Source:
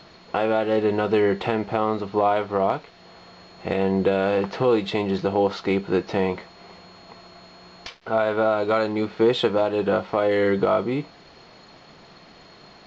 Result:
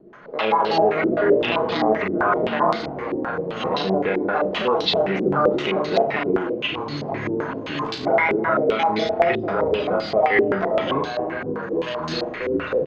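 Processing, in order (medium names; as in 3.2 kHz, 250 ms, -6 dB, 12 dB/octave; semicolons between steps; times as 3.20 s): pitch shift switched off and on +7 st, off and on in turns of 101 ms; recorder AGC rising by 5.6 dB/s; bass shelf 300 Hz -10 dB; comb 4.8 ms, depth 35%; in parallel at -2.5 dB: level held to a coarse grid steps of 22 dB; on the sum: rotary cabinet horn 6.3 Hz, later 0.75 Hz, at 7.39 s; peak limiter -19 dBFS, peak gain reduction 10.5 dB; on a send: flutter echo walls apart 6.3 m, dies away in 0.42 s; on the sum: ever faster or slower copies 129 ms, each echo -5 st, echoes 3, each echo -6 dB; step-sequenced low-pass 7.7 Hz 350–4300 Hz; trim +3 dB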